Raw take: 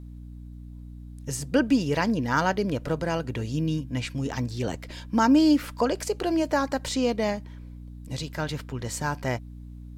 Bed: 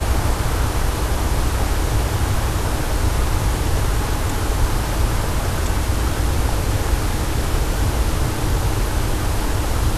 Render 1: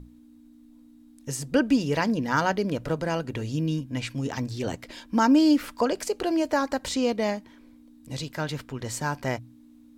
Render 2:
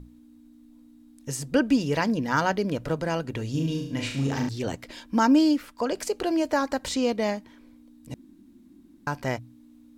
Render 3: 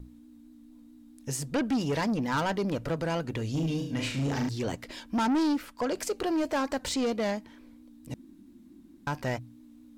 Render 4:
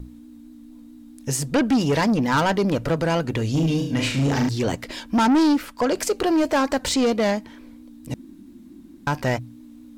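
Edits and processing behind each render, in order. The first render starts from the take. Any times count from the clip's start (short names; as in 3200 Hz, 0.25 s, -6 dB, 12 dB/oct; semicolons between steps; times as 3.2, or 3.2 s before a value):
notches 60/120/180 Hz
3.5–4.49 flutter echo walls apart 6.2 m, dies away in 0.62 s; 5.41–5.97 dip -8 dB, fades 0.24 s; 8.14–9.07 room tone
vibrato 4.5 Hz 50 cents; soft clip -23 dBFS, distortion -10 dB
gain +8.5 dB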